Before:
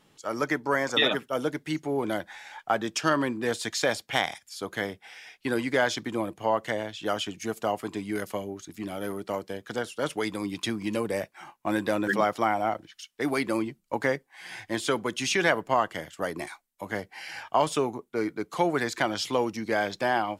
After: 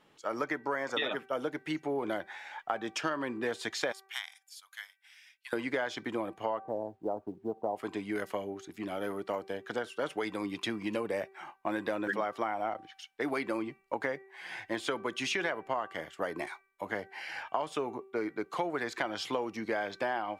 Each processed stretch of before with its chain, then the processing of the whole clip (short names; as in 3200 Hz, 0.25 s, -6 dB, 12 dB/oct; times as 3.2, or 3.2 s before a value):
3.92–5.53 HPF 950 Hz 24 dB/oct + differentiator + transient shaper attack +2 dB, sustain -5 dB
6.6–7.76 elliptic low-pass 910 Hz, stop band 70 dB + companded quantiser 8-bit
whole clip: tone controls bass -8 dB, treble -10 dB; de-hum 387 Hz, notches 7; compressor 6:1, threshold -29 dBFS